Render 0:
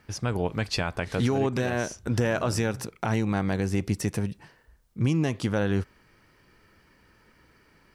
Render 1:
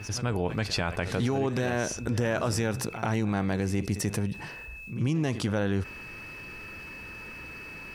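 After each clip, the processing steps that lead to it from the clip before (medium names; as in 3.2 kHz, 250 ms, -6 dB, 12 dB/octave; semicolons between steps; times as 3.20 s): pre-echo 87 ms -18 dB; whistle 2.6 kHz -55 dBFS; level flattener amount 50%; trim -4 dB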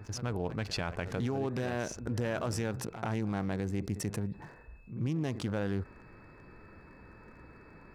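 local Wiener filter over 15 samples; trim -5.5 dB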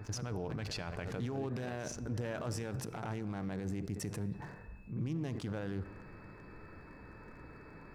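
peak limiter -31 dBFS, peak gain reduction 10 dB; simulated room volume 3200 m³, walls mixed, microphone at 0.4 m; trim +1 dB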